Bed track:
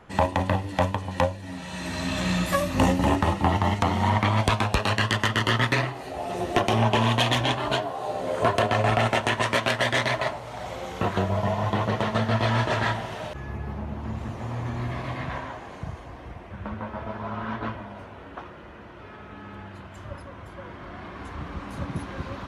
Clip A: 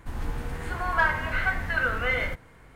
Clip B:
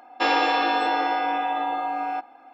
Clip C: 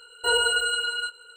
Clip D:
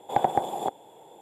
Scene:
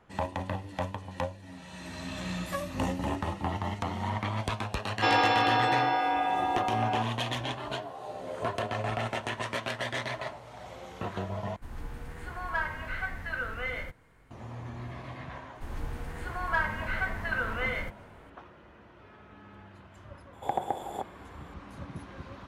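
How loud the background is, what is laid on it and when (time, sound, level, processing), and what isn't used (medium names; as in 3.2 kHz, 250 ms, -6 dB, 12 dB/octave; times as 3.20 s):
bed track -10 dB
4.82 s: add B -3 dB
11.56 s: replace with A -8.5 dB
15.55 s: add A -5.5 dB
20.33 s: add D -7 dB
not used: C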